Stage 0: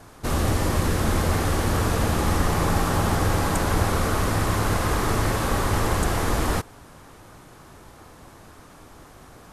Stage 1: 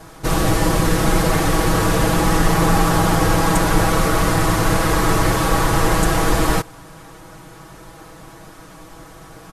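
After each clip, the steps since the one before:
comb filter 6.2 ms, depth 81%
level +4.5 dB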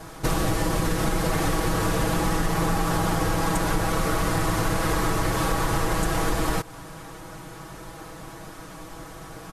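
downward compressor, threshold −20 dBFS, peak gain reduction 10 dB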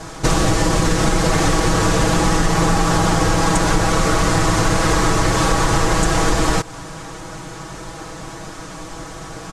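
low-pass with resonance 7,200 Hz, resonance Q 1.6
level +7.5 dB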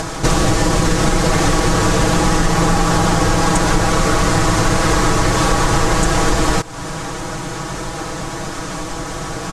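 upward compression, threshold −18 dBFS
level +1.5 dB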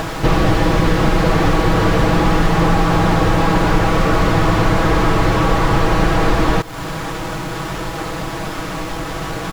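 sample-rate reduction 8,600 Hz
slew-rate limiting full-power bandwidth 190 Hz
level +1 dB

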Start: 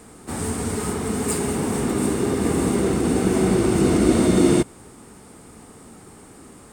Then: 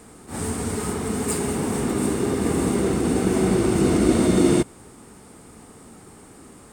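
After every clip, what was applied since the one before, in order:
level that may rise only so fast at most 170 dB per second
level −1 dB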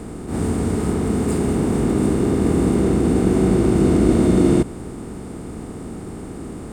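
compressor on every frequency bin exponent 0.6
spectral tilt −2 dB per octave
level −3 dB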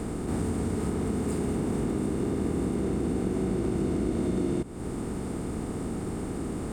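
downward compressor 4 to 1, threshold −27 dBFS, peak gain reduction 14.5 dB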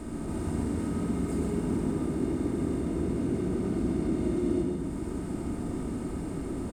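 single-tap delay 130 ms −4 dB
rectangular room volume 3,600 cubic metres, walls mixed, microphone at 2.7 metres
level −8 dB

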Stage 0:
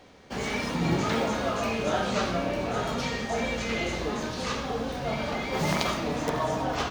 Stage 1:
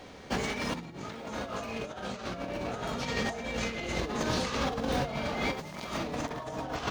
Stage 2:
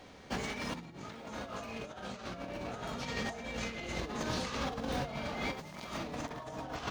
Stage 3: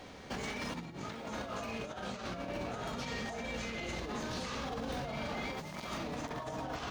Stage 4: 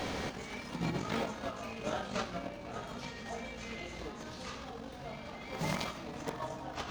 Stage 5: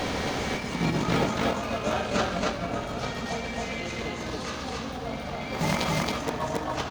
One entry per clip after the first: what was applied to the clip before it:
compressor whose output falls as the input rises −33 dBFS, ratio −0.5
parametric band 440 Hz −2 dB; level −5 dB
brickwall limiter −33.5 dBFS, peak gain reduction 11 dB; level +3.5 dB
compressor whose output falls as the input rises −45 dBFS, ratio −0.5; level +6.5 dB
loudspeakers that aren't time-aligned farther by 43 metres −12 dB, 94 metres −1 dB; level +8 dB

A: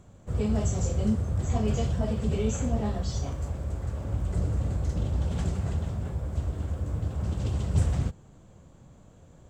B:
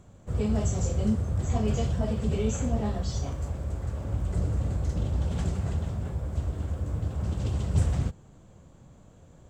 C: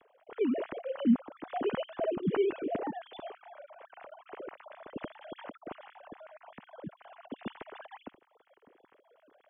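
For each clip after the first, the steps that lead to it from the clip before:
no processing that can be heard
three sine waves on the formant tracks; level −8.5 dB

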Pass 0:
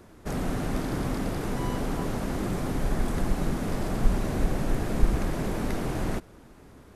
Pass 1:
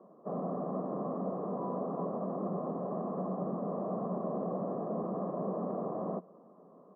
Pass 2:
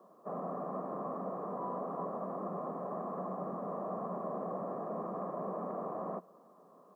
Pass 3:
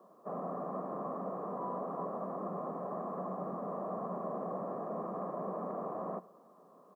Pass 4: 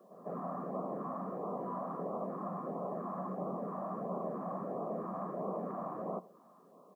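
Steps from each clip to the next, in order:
Chebyshev band-pass filter 180–1,100 Hz, order 4; comb filter 1.7 ms, depth 57%; level −2 dB
tilt shelving filter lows −10 dB, about 1,100 Hz; level +2.5 dB
single-tap delay 84 ms −21 dB
auto-filter notch sine 1.5 Hz 400–1,800 Hz; echo ahead of the sound 149 ms −15 dB; level +1.5 dB

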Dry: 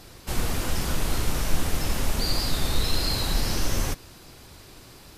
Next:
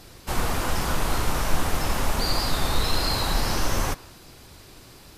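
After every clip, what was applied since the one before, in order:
dynamic equaliser 1,000 Hz, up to +8 dB, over −50 dBFS, Q 0.8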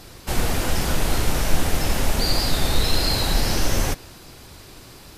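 dynamic equaliser 1,100 Hz, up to −8 dB, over −46 dBFS, Q 1.7
level +4 dB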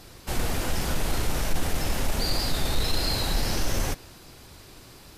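soft clipping −8.5 dBFS, distortion −22 dB
level −4.5 dB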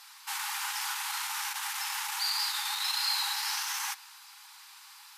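linear-phase brick-wall high-pass 780 Hz

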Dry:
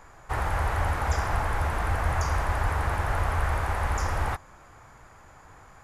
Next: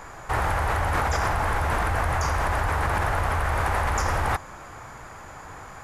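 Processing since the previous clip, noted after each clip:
low-shelf EQ 85 Hz −5.5 dB
in parallel at +2 dB: compressor whose output falls as the input rises −32 dBFS, ratio −0.5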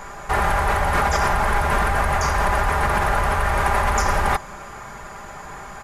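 comb filter 5 ms, depth 57%
level +4 dB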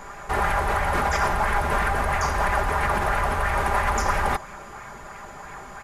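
auto-filter bell 3 Hz 250–2,400 Hz +6 dB
level −4.5 dB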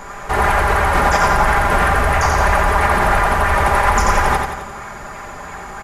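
repeating echo 88 ms, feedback 50%, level −4 dB
level +6.5 dB

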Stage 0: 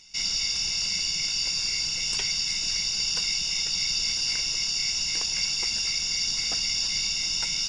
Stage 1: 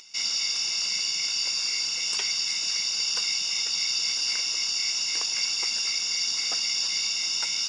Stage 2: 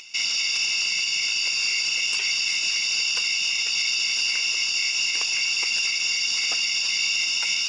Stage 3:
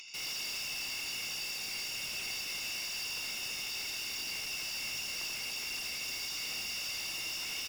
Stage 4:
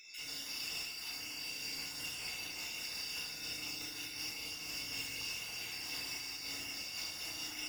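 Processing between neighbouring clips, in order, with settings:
high-pass filter 320 Hz 12 dB per octave; parametric band 1,200 Hz +5 dB 0.43 octaves; upward compression, threshold −46 dBFS
parametric band 2,600 Hz +13 dB 0.46 octaves; brickwall limiter −17 dBFS, peak gain reduction 9 dB; level +2.5 dB
speech leveller; hard clipping −31 dBFS, distortion −6 dB; single-tap delay 83 ms −4.5 dB; level −7.5 dB
time-frequency cells dropped at random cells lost 30%; feedback delay network reverb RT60 2.3 s, low-frequency decay 1.55×, high-frequency decay 0.45×, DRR −5.5 dB; amplitude modulation by smooth noise, depth 50%; level −5.5 dB

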